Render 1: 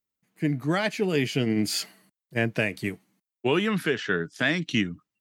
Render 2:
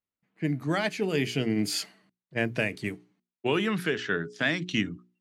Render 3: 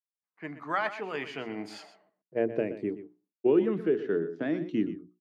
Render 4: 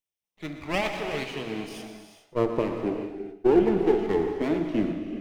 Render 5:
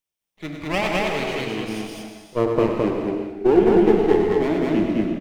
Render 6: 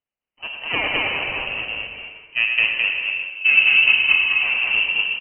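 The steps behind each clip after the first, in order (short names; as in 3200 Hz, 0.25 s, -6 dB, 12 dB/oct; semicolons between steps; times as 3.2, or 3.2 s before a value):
low-pass opened by the level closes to 2900 Hz, open at -22.5 dBFS; notches 60/120/180/240/300/360/420 Hz; gain -2 dB
gate with hold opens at -57 dBFS; band-pass sweep 1100 Hz -> 360 Hz, 1.35–2.69; echo 0.123 s -13 dB; gain +6.5 dB
minimum comb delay 0.33 ms; non-linear reverb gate 0.45 s flat, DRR 4.5 dB; gain +3.5 dB
loudspeakers at several distances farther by 34 m -7 dB, 72 m -1 dB; gain +3.5 dB
inverted band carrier 3000 Hz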